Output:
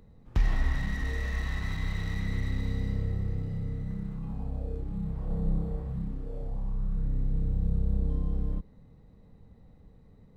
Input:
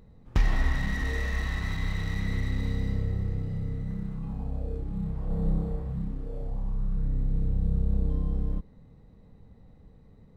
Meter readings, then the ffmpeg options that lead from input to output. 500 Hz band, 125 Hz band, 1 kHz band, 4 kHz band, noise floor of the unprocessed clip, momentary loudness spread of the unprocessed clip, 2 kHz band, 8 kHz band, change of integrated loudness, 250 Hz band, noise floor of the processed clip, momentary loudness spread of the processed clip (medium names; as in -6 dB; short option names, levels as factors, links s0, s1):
-2.5 dB, -1.5 dB, -3.5 dB, -3.5 dB, -54 dBFS, 7 LU, -3.5 dB, no reading, -1.5 dB, -2.0 dB, -56 dBFS, 7 LU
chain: -filter_complex "[0:a]acrossover=split=190[s0][s1];[s1]acompressor=threshold=0.0178:ratio=6[s2];[s0][s2]amix=inputs=2:normalize=0,volume=0.841"